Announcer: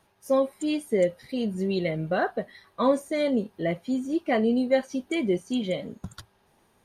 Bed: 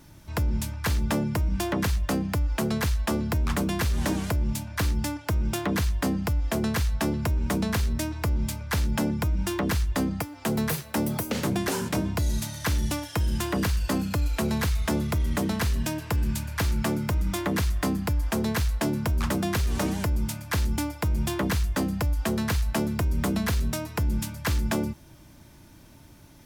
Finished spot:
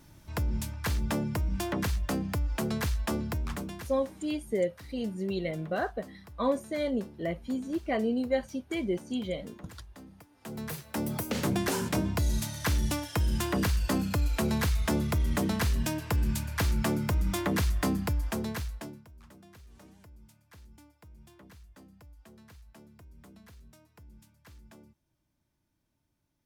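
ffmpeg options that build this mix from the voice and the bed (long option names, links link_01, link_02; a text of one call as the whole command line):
ffmpeg -i stem1.wav -i stem2.wav -filter_complex "[0:a]adelay=3600,volume=-5.5dB[link_01];[1:a]volume=17dB,afade=type=out:start_time=3.14:duration=0.84:silence=0.112202,afade=type=in:start_time=10.3:duration=1.17:silence=0.0841395,afade=type=out:start_time=17.93:duration=1.11:silence=0.0501187[link_02];[link_01][link_02]amix=inputs=2:normalize=0" out.wav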